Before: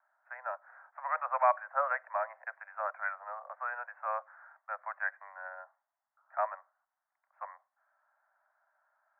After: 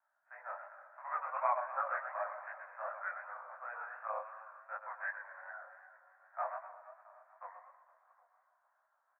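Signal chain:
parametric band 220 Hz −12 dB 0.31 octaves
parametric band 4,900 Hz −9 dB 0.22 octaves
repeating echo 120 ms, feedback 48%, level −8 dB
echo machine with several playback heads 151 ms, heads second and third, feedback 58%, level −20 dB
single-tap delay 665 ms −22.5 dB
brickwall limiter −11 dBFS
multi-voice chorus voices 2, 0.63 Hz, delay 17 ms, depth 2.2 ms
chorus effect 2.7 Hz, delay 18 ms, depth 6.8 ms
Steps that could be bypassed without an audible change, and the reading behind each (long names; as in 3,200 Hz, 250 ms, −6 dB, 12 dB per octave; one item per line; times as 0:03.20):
parametric band 220 Hz: nothing at its input below 480 Hz
parametric band 4,900 Hz: nothing at its input above 2,400 Hz
brickwall limiter −11 dBFS: peak of its input −14.0 dBFS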